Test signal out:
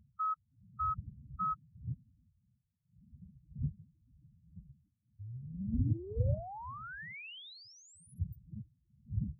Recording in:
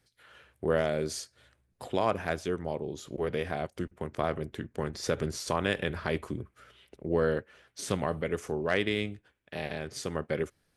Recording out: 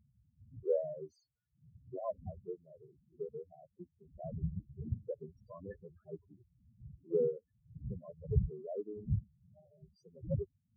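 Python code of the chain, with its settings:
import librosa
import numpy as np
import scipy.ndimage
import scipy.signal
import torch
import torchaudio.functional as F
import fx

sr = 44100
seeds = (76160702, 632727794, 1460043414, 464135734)

y = fx.dmg_wind(x, sr, seeds[0], corner_hz=160.0, level_db=-34.0)
y = scipy.signal.sosfilt(scipy.signal.butter(2, 52.0, 'highpass', fs=sr, output='sos'), y)
y = fx.cheby_harmonics(y, sr, harmonics=(2, 6, 7), levels_db=(-26, -42, -32), full_scale_db=-9.0)
y = fx.spec_topn(y, sr, count=4)
y = fx.upward_expand(y, sr, threshold_db=-42.0, expansion=2.5)
y = F.gain(torch.from_numpy(y), 3.0).numpy()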